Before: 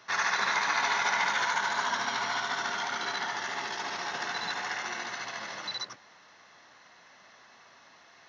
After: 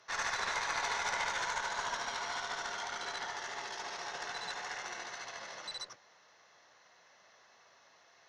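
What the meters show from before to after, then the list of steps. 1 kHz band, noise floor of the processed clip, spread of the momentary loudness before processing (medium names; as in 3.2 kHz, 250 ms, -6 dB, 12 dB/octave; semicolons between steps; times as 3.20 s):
-7.5 dB, -64 dBFS, 10 LU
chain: Chebyshev shaper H 4 -18 dB, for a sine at -13 dBFS; ten-band graphic EQ 250 Hz -6 dB, 500 Hz +6 dB, 8 kHz +7 dB; trim -8.5 dB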